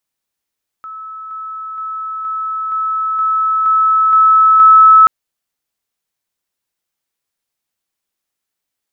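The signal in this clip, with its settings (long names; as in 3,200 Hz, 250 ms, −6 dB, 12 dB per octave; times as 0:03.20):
level staircase 1,300 Hz −26.5 dBFS, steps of 3 dB, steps 9, 0.47 s 0.00 s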